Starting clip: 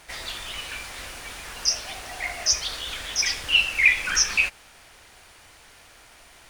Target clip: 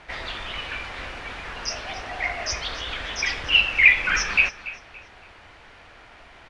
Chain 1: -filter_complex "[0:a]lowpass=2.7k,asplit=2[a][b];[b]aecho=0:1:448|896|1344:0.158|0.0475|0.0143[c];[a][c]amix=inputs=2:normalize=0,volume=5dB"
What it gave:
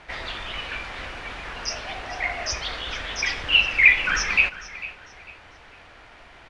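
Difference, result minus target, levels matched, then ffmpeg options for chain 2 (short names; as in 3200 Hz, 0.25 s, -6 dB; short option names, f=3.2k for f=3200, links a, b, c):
echo 0.164 s late
-filter_complex "[0:a]lowpass=2.7k,asplit=2[a][b];[b]aecho=0:1:284|568|852:0.158|0.0475|0.0143[c];[a][c]amix=inputs=2:normalize=0,volume=5dB"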